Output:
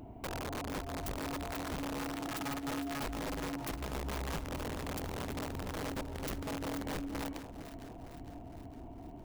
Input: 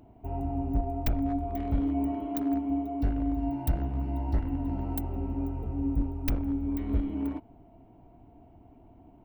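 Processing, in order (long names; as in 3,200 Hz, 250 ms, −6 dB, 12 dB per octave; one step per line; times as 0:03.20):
downward compressor 6 to 1, threshold −43 dBFS, peak gain reduction 20.5 dB
wrap-around overflow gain 39 dB
delay that swaps between a low-pass and a high-pass 229 ms, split 960 Hz, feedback 76%, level −9 dB
level +5.5 dB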